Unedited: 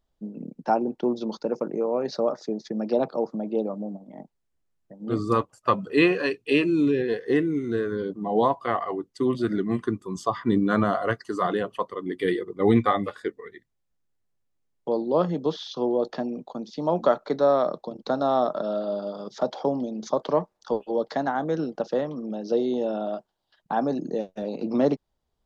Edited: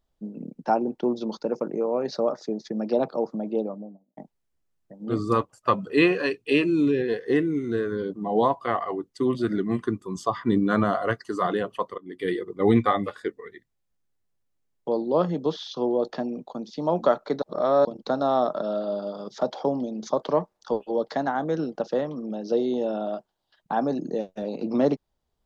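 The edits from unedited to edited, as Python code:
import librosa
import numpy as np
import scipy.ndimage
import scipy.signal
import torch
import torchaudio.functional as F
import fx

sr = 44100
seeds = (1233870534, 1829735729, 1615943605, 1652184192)

y = fx.studio_fade_out(x, sr, start_s=3.49, length_s=0.68)
y = fx.edit(y, sr, fx.fade_in_from(start_s=11.98, length_s=0.59, curve='qsin', floor_db=-21.0),
    fx.reverse_span(start_s=17.42, length_s=0.43), tone=tone)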